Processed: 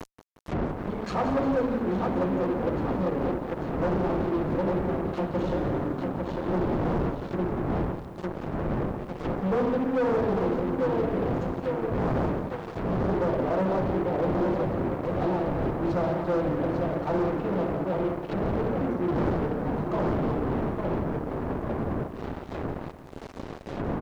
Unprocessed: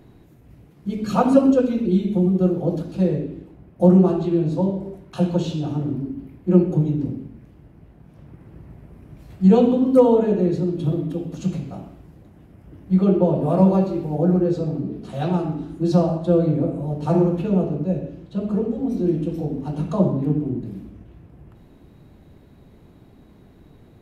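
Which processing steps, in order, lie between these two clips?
wind noise 170 Hz -17 dBFS; gate with hold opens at -25 dBFS; low shelf 250 Hz -10.5 dB; on a send: feedback echo 0.848 s, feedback 49%, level -7 dB; on the sum: fuzz box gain 27 dB, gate -32 dBFS; treble ducked by the level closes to 1300 Hz, closed at -16 dBFS; tone controls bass -5 dB, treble +11 dB; reverse; upward compressor, threshold -26 dBFS; reverse; lo-fi delay 0.177 s, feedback 55%, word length 8-bit, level -11.5 dB; gain -8 dB

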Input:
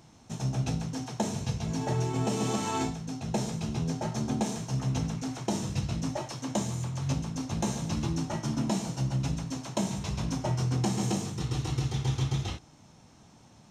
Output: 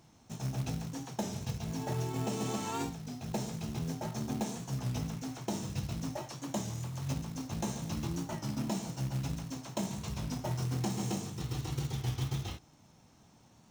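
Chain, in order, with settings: short-mantissa float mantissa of 2-bit; record warp 33 1/3 rpm, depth 100 cents; gain -5.5 dB

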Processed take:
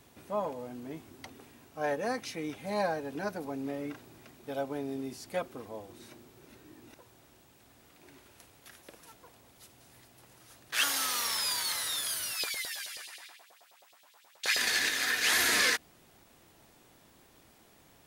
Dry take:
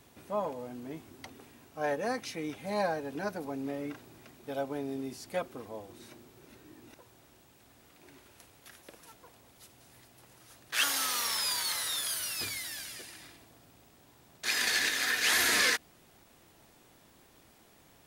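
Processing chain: 12.33–14.57 LFO high-pass saw up 9.4 Hz 500–4400 Hz

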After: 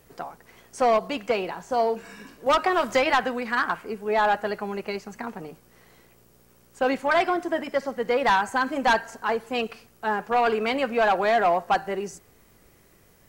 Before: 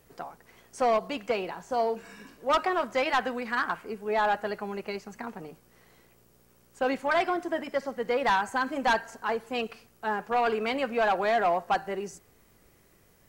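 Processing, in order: 2.46–3.24 three-band squash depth 100%; gain +4 dB

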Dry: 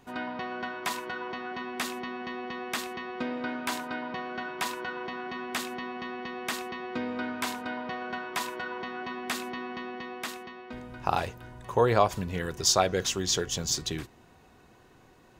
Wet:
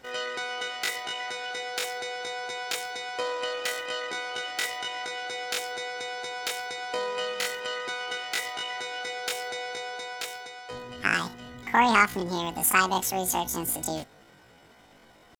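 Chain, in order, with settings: bell 8800 Hz -7.5 dB 0.78 oct; pitch shift +12 st; gain +2.5 dB

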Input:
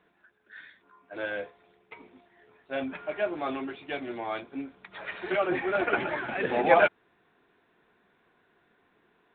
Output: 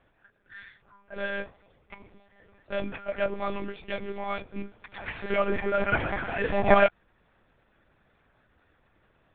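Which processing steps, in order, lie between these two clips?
monotone LPC vocoder at 8 kHz 200 Hz; gain +1.5 dB

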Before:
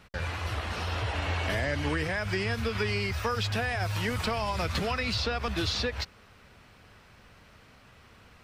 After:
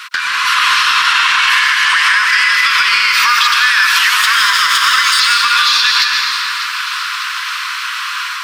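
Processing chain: 4.21–5.2 minimum comb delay 0.6 ms; rippled Chebyshev high-pass 1000 Hz, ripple 3 dB; 2.27–2.67 whine 2000 Hz -38 dBFS; compressor 12:1, threshold -45 dBFS, peak gain reduction 16.5 dB; echo with dull and thin repeats by turns 0.3 s, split 1400 Hz, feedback 78%, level -13 dB; soft clip -37 dBFS, distortion -24 dB; AGC gain up to 6 dB; reverb RT60 2.3 s, pre-delay 0.11 s, DRR 0.5 dB; maximiser +32 dB; gain -1 dB

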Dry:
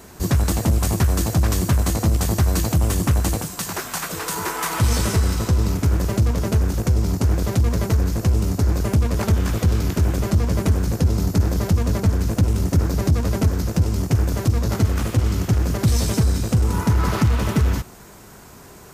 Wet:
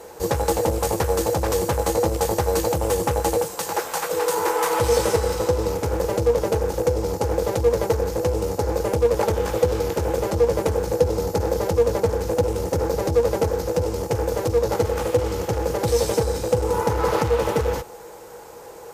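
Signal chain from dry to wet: resonant low shelf 380 Hz -7 dB, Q 3; added harmonics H 2 -26 dB, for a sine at -10 dBFS; small resonant body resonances 330/480/830 Hz, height 15 dB, ringing for 65 ms; gain -2 dB

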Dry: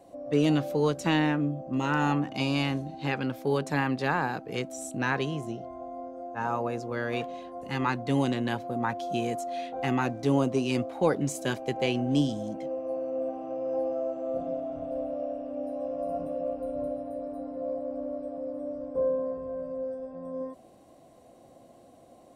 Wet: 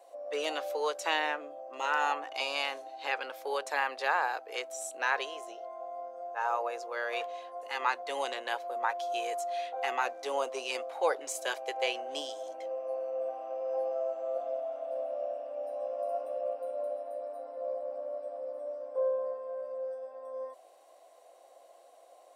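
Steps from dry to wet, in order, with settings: inverse Chebyshev high-pass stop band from 200 Hz, stop band 50 dB

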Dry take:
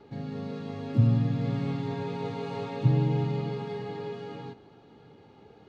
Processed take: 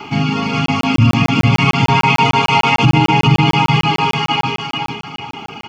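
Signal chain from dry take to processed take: HPF 250 Hz 6 dB/oct; low shelf 430 Hz -3.5 dB; fixed phaser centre 2600 Hz, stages 8; spring tank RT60 1.5 s, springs 33/45 ms, chirp 35 ms, DRR 8 dB; reverb removal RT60 1.2 s; bell 2700 Hz +8 dB 1.4 oct; notches 60/120/180/240/300/360/420 Hz; feedback echo 0.421 s, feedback 36%, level -3 dB; maximiser +31.5 dB; crackling interface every 0.15 s, samples 1024, zero, from 0.66; gain -1.5 dB

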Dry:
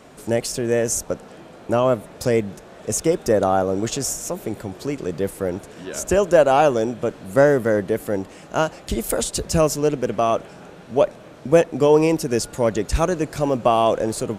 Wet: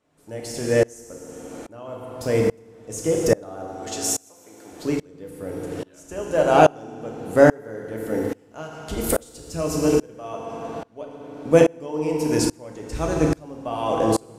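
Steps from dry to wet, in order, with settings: 3.66–4.73 HPF 910 Hz 6 dB/oct; FDN reverb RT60 1.7 s, low-frequency decay 1.25×, high-frequency decay 0.85×, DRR 1 dB; dB-ramp tremolo swelling 1.2 Hz, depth 29 dB; gain +2 dB

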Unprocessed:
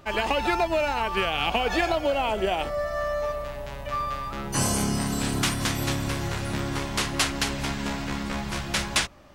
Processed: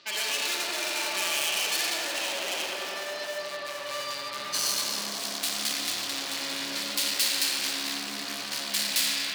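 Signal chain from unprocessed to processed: speaker cabinet 110–5000 Hz, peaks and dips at 190 Hz +5 dB, 300 Hz +4 dB, 780 Hz -8 dB, 1300 Hz -6 dB, 4400 Hz +7 dB; in parallel at +3 dB: limiter -18.5 dBFS, peak gain reduction 8.5 dB; on the sum: digital reverb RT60 3.6 s, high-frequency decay 0.55×, pre-delay 5 ms, DRR -0.5 dB; hard clip -21 dBFS, distortion -5 dB; differentiator; on a send: tape echo 92 ms, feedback 90%, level -3.5 dB, low-pass 1800 Hz; on the sum: gain +4.5 dB

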